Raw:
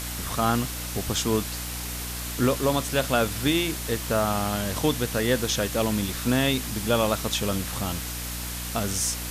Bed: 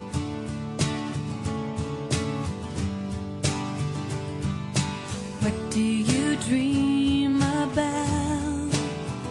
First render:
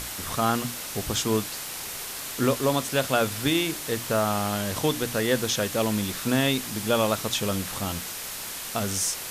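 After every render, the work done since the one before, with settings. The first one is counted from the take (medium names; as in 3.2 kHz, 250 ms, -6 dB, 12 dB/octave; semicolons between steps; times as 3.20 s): hum notches 60/120/180/240/300 Hz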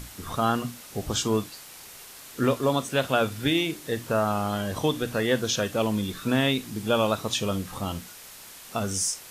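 noise print and reduce 10 dB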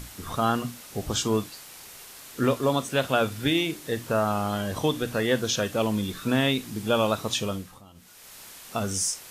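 7.38–8.39 s: dip -20.5 dB, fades 0.45 s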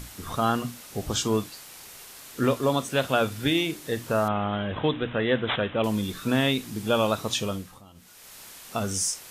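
4.28–5.84 s: careless resampling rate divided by 6×, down none, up filtered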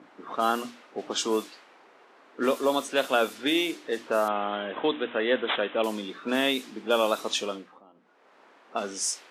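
high-pass 270 Hz 24 dB/octave; level-controlled noise filter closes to 1 kHz, open at -21.5 dBFS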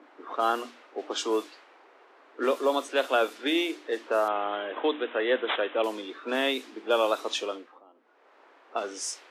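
steep high-pass 280 Hz 36 dB/octave; treble shelf 5.4 kHz -8.5 dB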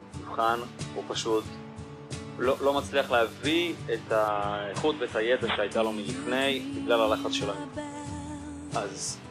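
add bed -12 dB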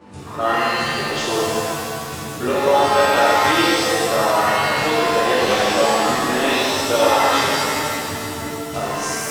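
feedback echo behind a high-pass 164 ms, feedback 82%, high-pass 5.1 kHz, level -6 dB; pitch-shifted reverb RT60 1.9 s, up +7 st, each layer -2 dB, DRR -6.5 dB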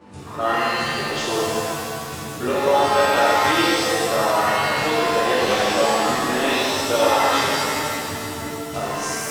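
trim -2 dB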